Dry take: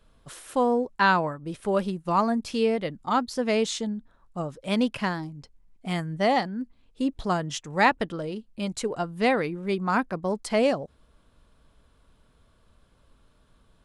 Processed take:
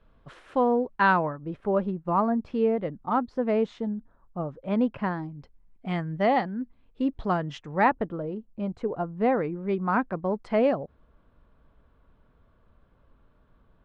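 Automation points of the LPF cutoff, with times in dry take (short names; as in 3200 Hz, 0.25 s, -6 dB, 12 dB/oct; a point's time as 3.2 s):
1.07 s 2300 Hz
1.76 s 1300 Hz
4.98 s 1300 Hz
5.38 s 2300 Hz
7.62 s 2300 Hz
8.03 s 1100 Hz
9.23 s 1100 Hz
9.83 s 1800 Hz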